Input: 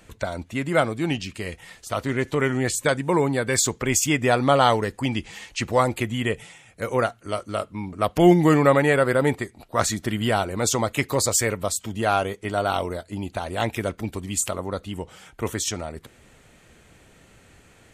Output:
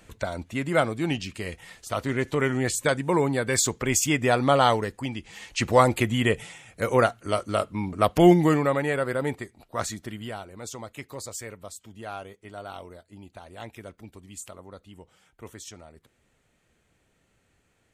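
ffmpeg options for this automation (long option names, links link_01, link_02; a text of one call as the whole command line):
ffmpeg -i in.wav -af "volume=9dB,afade=type=out:start_time=4.68:duration=0.53:silence=0.446684,afade=type=in:start_time=5.21:duration=0.48:silence=0.281838,afade=type=out:start_time=7.98:duration=0.7:silence=0.354813,afade=type=out:start_time=9.75:duration=0.65:silence=0.375837" out.wav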